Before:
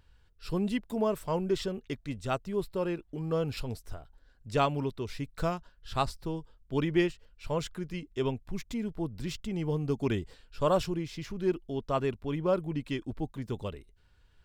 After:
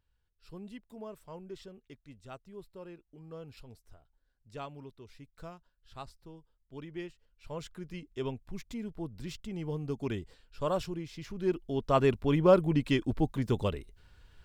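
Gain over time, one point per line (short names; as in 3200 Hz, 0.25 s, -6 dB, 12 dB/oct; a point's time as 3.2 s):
6.91 s -15.5 dB
7.92 s -5 dB
11.14 s -5 dB
12.14 s +6 dB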